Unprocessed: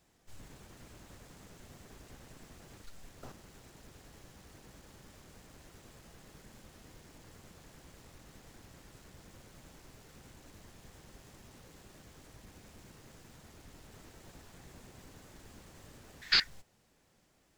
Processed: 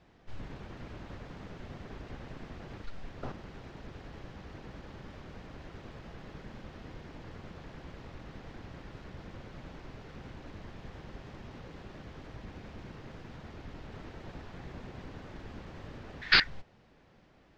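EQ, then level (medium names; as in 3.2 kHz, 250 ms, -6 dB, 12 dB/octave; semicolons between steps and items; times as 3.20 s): distance through air 250 m; +10.0 dB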